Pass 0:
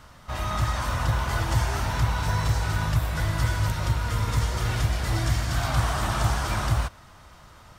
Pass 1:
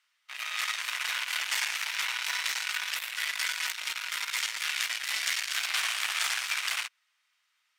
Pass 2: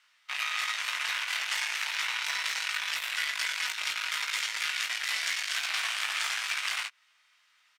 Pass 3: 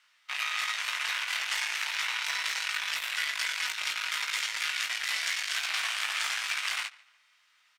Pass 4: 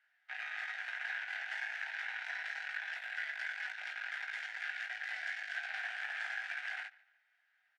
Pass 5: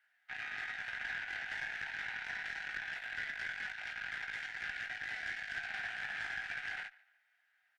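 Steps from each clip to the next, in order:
added harmonics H 5 -38 dB, 7 -17 dB, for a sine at -11.5 dBFS; resonant high-pass 2300 Hz, resonance Q 2; gain +2 dB
high shelf 10000 Hz -10 dB; compressor 5:1, threshold -37 dBFS, peak gain reduction 10.5 dB; doubler 20 ms -6 dB; gain +8 dB
darkening echo 0.144 s, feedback 36%, low-pass 4800 Hz, level -22 dB
double band-pass 1100 Hz, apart 1.1 oct; gain +1 dB
tube stage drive 30 dB, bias 0.3; gain +1 dB

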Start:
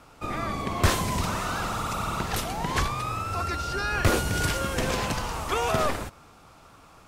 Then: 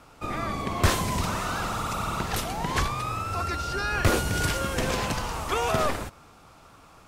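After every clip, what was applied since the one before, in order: nothing audible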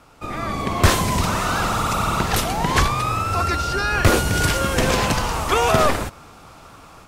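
AGC gain up to 7 dB; gain +1.5 dB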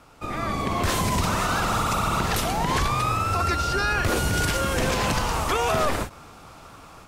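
limiter -12.5 dBFS, peak gain reduction 10.5 dB; ending taper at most 230 dB/s; gain -1.5 dB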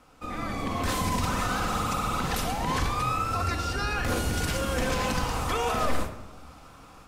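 shoebox room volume 3700 m³, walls furnished, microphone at 2 m; gain -6 dB

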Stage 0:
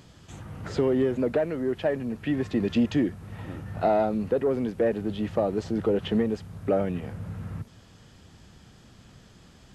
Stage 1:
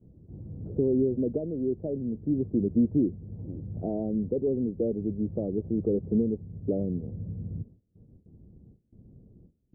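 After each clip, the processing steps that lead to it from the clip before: gate with hold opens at -42 dBFS; inverse Chebyshev low-pass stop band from 2600 Hz, stop band 80 dB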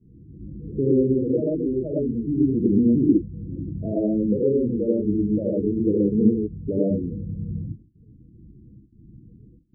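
non-linear reverb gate 0.14 s rising, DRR -4.5 dB; loudest bins only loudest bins 16; gain +1 dB

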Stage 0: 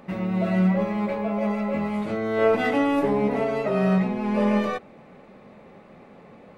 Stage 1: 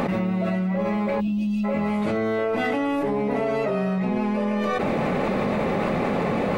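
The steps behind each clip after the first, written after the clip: spectral gain 1.2–1.64, 370–2500 Hz -28 dB; fast leveller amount 100%; gain -7 dB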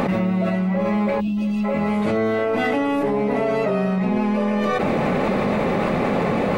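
pre-echo 0.271 s -15.5 dB; gain +3 dB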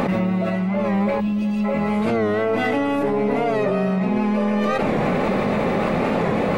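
on a send at -15 dB: reverb RT60 3.9 s, pre-delay 49 ms; on the sum: record warp 45 rpm, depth 100 cents

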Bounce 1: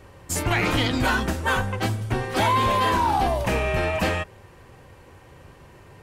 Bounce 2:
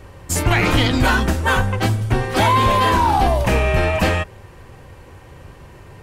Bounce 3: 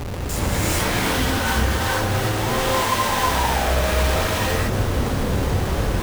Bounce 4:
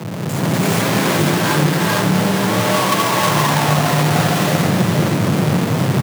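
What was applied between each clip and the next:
low shelf 83 Hz +7 dB; gain +5 dB
compressor, threshold -24 dBFS, peak gain reduction 12 dB; Schmitt trigger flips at -42.5 dBFS; non-linear reverb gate 0.47 s rising, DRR -7 dB
half-waves squared off; frequency shift +85 Hz; echo 0.474 s -6.5 dB; gain -1 dB

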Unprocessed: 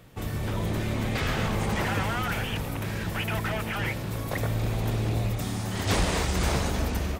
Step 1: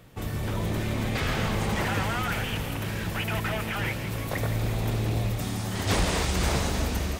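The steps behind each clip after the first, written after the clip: thin delay 0.166 s, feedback 71%, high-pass 2200 Hz, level -7.5 dB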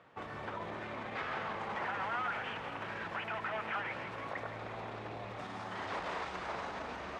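limiter -23.5 dBFS, peak gain reduction 9.5 dB; band-pass 1100 Hz, Q 1.1; air absorption 67 m; gain +1 dB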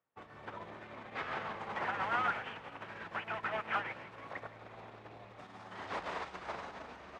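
upward expander 2.5:1, over -56 dBFS; gain +5 dB

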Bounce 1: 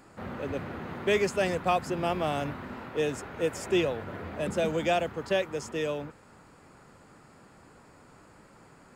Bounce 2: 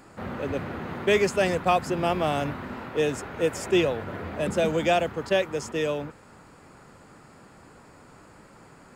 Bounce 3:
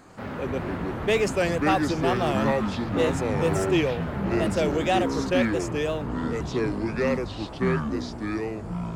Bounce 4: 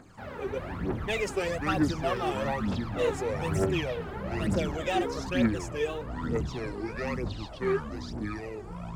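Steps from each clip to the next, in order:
attack slew limiter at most 600 dB/s; gain +4 dB
wow and flutter 130 cents; echoes that change speed 92 ms, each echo -6 st, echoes 3; soft clip -13 dBFS, distortion -20 dB
phaser 1.1 Hz, delay 2.7 ms, feedback 67%; gain -7.5 dB

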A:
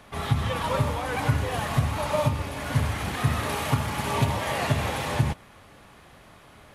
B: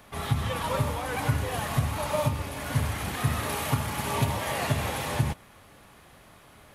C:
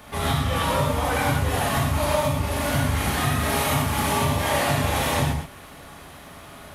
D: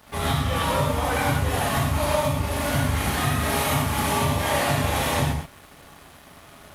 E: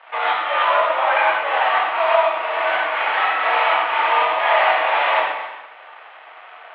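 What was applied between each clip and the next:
high shelf 11000 Hz +11.5 dB; gain -2.5 dB
compressor, threshold -29 dBFS, peak gain reduction 10 dB; non-linear reverb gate 0.15 s flat, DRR -3 dB; gain +5.5 dB
crossover distortion -47 dBFS
mistuned SSB +57 Hz 540–2900 Hz; non-linear reverb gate 0.32 s rising, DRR 11.5 dB; gain +9 dB

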